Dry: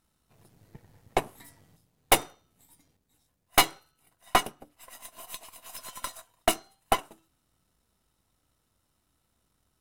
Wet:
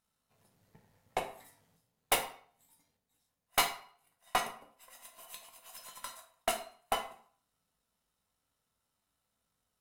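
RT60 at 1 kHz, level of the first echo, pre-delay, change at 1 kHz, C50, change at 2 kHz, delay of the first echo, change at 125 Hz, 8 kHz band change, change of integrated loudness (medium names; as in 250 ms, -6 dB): 0.50 s, no echo, 11 ms, -7.0 dB, 9.5 dB, -6.5 dB, no echo, -13.0 dB, -7.0 dB, -7.5 dB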